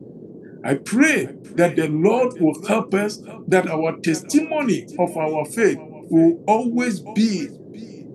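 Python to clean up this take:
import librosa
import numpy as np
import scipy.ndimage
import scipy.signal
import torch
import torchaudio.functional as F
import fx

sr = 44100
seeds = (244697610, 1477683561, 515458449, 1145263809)

y = fx.noise_reduce(x, sr, print_start_s=0.03, print_end_s=0.53, reduce_db=23.0)
y = fx.fix_echo_inverse(y, sr, delay_ms=582, level_db=-20.5)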